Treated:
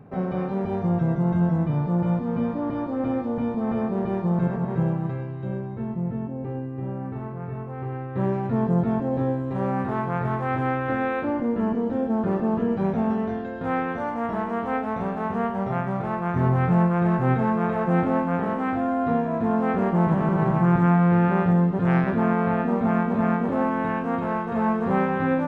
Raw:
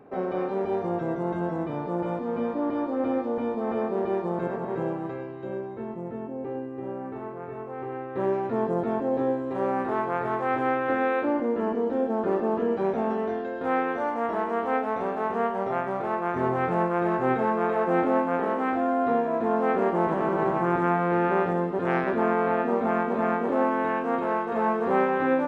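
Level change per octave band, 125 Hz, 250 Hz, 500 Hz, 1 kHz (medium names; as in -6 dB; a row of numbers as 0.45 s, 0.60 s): +13.0 dB, +5.5 dB, -2.0 dB, -0.5 dB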